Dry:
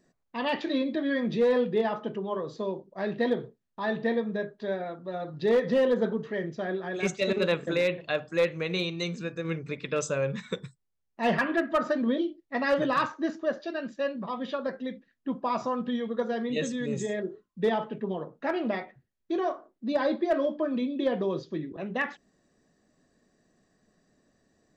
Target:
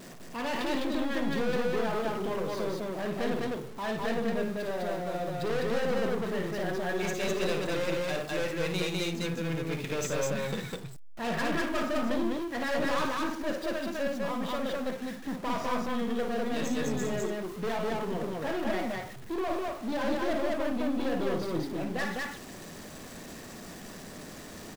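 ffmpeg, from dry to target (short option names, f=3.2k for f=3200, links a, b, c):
-af "aeval=exprs='val(0)+0.5*0.01*sgn(val(0))':c=same,aeval=exprs='(tanh(31.6*val(0)+0.45)-tanh(0.45))/31.6':c=same,aecho=1:1:55.39|204.1:0.501|0.891"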